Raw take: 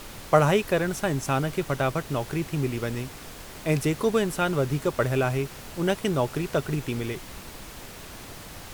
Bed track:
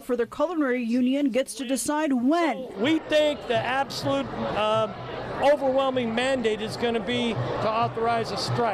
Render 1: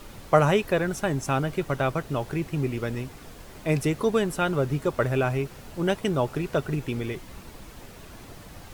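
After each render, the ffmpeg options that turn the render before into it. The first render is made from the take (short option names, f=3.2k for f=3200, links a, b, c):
-af "afftdn=nr=7:nf=-42"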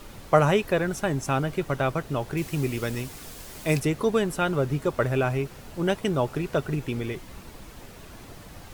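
-filter_complex "[0:a]asettb=1/sr,asplit=3[a][b][c];[a]atrim=end=2.374[d];[b]atrim=start=2.37:end=3.8,asetpts=PTS-STARTPTS,afade=t=in:d=0.004:c=qsin,afade=t=out:st=1.426:d=0.004:c=qsin,highshelf=f=3.5k:g=11[e];[c]atrim=start=3.796[f];[d][e]acrossfade=d=0.004:c1=hsin:c2=qsin[g];[g][f]acrossfade=d=0.004:c1=qsin:c2=hsin"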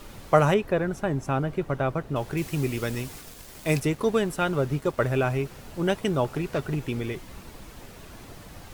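-filter_complex "[0:a]asettb=1/sr,asplit=3[a][b][c];[a]atrim=end=0.544[d];[b]atrim=start=0.54:end=2.16,asetpts=PTS-STARTPTS,afade=t=in:d=0.004:c=qsin,afade=t=out:st=1.616:d=0.004:c=qsin,highshelf=f=2.4k:g=-11[e];[c]atrim=start=2.156[f];[d][e]acrossfade=d=0.004:c1=hsin:c2=qsin[g];[g][f]acrossfade=d=0.004:c1=qsin:c2=hsin,asettb=1/sr,asplit=3[h][i][j];[h]atrim=end=3.214[k];[i]atrim=start=3.21:end=4.98,asetpts=PTS-STARTPTS,afade=t=in:d=0.004:c=qsin,afade=t=out:st=1.766:d=0.004:c=qsin,aeval=exprs='sgn(val(0))*max(abs(val(0))-0.00398,0)':c=same[l];[j]atrim=start=4.976[m];[k][l]acrossfade=d=0.004:c1=hsin:c2=qsin[n];[n][m]acrossfade=d=0.004:c1=qsin:c2=hsin,asettb=1/sr,asplit=3[o][p][q];[o]atrim=end=6.244[r];[p]atrim=start=6.24:end=6.89,asetpts=PTS-STARTPTS,afade=t=in:d=0.004:c=qsin,afade=t=out:st=0.646:d=0.004:c=qsin,asoftclip=type=hard:threshold=-21.5dB[s];[q]atrim=start=6.886[t];[r][s]acrossfade=d=0.004:c1=hsin:c2=qsin[u];[u][t]acrossfade=d=0.004:c1=qsin:c2=hsin"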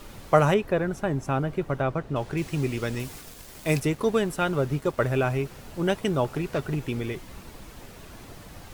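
-filter_complex "[0:a]asettb=1/sr,asplit=3[a][b][c];[a]atrim=end=1.824[d];[b]atrim=start=1.82:end=3,asetpts=PTS-STARTPTS,afade=t=in:d=0.004:c=qsin,afade=t=out:st=1.176:d=0.004:c=qsin,equalizer=f=15k:t=o:w=0.87:g=-10[e];[c]atrim=start=2.996[f];[d][e]acrossfade=d=0.004:c1=hsin:c2=qsin[g];[g][f]acrossfade=d=0.004:c1=qsin:c2=hsin"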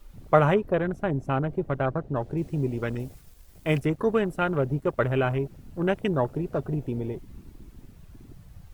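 -af "afwtdn=0.0178,highshelf=f=12k:g=7"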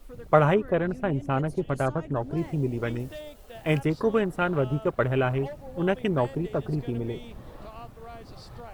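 -filter_complex "[1:a]volume=-20dB[a];[0:a][a]amix=inputs=2:normalize=0"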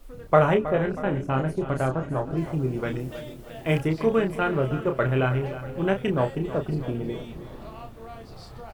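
-filter_complex "[0:a]asplit=2[a][b];[b]adelay=31,volume=-6dB[c];[a][c]amix=inputs=2:normalize=0,aecho=1:1:319|638|957|1276|1595:0.211|0.114|0.0616|0.0333|0.018"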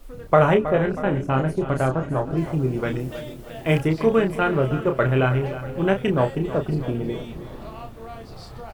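-af "volume=3.5dB,alimiter=limit=-3dB:level=0:latency=1"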